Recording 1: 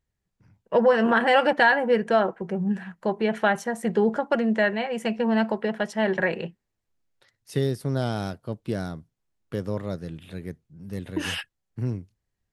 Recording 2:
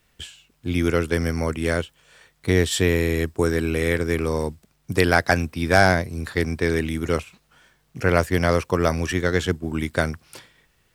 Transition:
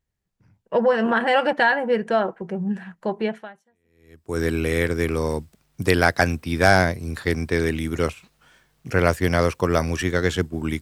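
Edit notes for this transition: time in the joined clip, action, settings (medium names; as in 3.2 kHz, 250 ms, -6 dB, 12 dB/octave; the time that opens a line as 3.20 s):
recording 1
3.84 s: go over to recording 2 from 2.94 s, crossfade 1.14 s exponential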